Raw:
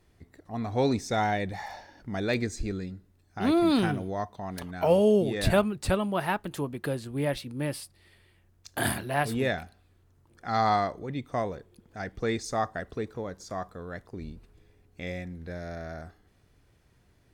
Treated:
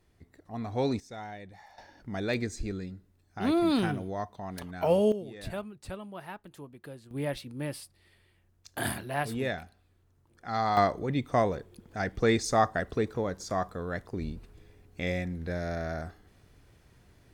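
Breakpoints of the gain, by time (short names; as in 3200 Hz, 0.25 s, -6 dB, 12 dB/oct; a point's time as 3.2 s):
-3.5 dB
from 1 s -15 dB
from 1.78 s -2.5 dB
from 5.12 s -14 dB
from 7.11 s -4 dB
from 10.77 s +4.5 dB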